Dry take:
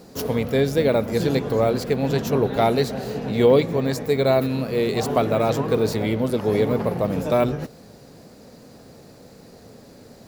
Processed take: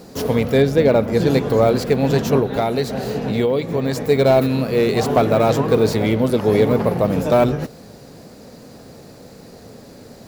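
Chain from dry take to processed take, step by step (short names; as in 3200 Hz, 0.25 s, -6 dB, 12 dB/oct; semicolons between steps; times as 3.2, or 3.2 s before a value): 0.62–1.27 high shelf 4600 Hz -9.5 dB; 2.39–3.97 compressor 5:1, threshold -21 dBFS, peak gain reduction 9.5 dB; slew limiter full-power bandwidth 170 Hz; gain +5 dB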